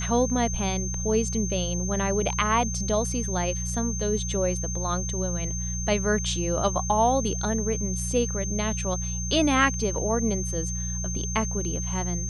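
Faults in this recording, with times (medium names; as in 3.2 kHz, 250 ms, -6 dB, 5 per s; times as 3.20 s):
hum 60 Hz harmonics 3 -31 dBFS
whine 6.3 kHz -32 dBFS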